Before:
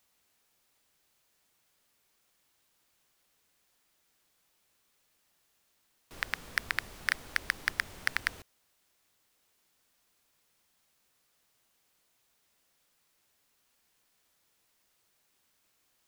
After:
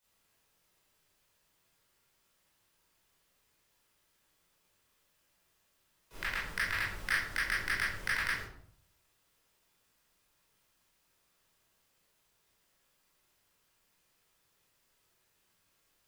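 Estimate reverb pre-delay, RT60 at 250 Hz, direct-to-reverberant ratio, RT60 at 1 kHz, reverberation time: 18 ms, 0.70 s, −9.0 dB, 0.60 s, 0.60 s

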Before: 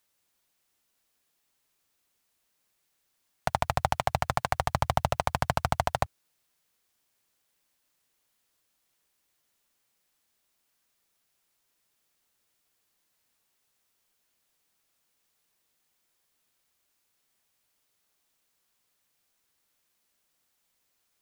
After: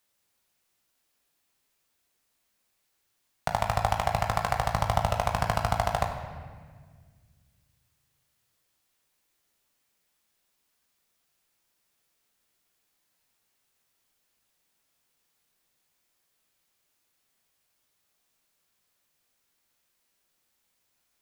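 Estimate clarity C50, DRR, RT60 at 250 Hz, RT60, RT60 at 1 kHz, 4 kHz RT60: 6.5 dB, 2.5 dB, 2.4 s, 1.6 s, 1.5 s, 1.3 s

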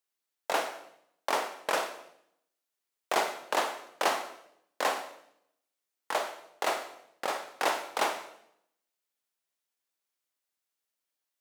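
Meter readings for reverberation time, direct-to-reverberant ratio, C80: 0.75 s, 7.0 dB, 12.0 dB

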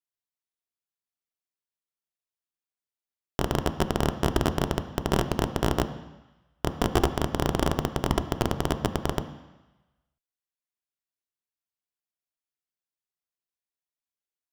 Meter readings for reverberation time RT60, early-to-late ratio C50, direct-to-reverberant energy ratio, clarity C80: 1.1 s, 12.0 dB, 8.5 dB, 13.5 dB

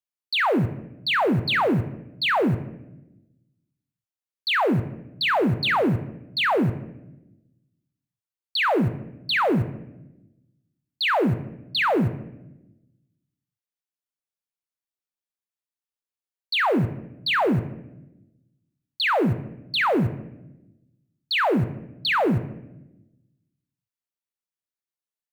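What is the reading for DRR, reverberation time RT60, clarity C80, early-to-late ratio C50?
11.5 dB, 0.95 s, 17.0 dB, 14.5 dB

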